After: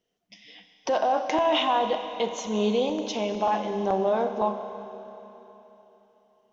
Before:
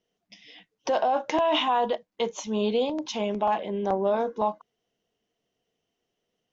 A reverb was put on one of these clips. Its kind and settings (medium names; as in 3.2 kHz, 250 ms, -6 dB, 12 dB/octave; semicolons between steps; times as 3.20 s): Schroeder reverb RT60 3.5 s, combs from 30 ms, DRR 7 dB